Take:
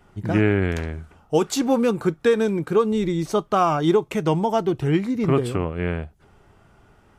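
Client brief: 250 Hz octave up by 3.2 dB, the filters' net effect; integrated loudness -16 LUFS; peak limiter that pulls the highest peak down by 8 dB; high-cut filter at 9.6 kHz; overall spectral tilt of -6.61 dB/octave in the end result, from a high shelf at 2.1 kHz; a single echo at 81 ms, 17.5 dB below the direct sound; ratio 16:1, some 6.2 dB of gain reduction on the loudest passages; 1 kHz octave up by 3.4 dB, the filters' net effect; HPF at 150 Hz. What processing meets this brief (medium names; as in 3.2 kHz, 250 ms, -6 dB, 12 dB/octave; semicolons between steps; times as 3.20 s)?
high-pass 150 Hz; low-pass 9.6 kHz; peaking EQ 250 Hz +5 dB; peaking EQ 1 kHz +5 dB; treble shelf 2.1 kHz -4 dB; compression 16:1, threshold -17 dBFS; peak limiter -15 dBFS; delay 81 ms -17.5 dB; trim +9 dB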